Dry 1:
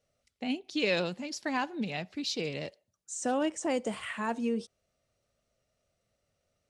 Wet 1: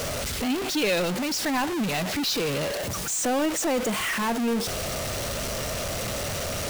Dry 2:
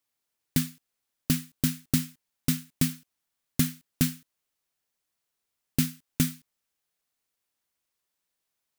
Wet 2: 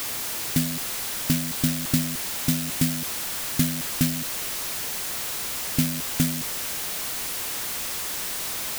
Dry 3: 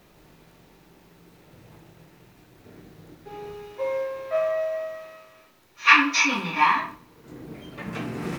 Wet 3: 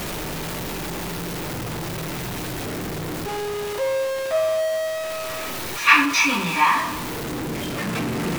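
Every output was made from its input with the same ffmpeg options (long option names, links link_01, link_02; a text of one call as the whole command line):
ffmpeg -i in.wav -af "aeval=exprs='val(0)+0.5*0.0668*sgn(val(0))':channel_layout=same" out.wav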